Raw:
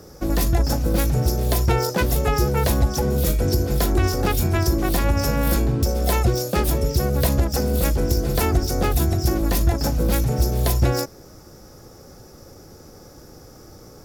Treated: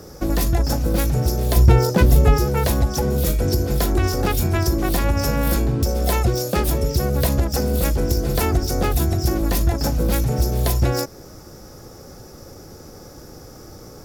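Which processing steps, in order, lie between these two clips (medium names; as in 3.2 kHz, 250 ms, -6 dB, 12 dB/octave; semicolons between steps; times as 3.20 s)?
1.56–2.38 s: bass shelf 370 Hz +10 dB; in parallel at +0.5 dB: compression, threshold -25 dBFS, peak gain reduction 18 dB; on the sum: trim -2.5 dB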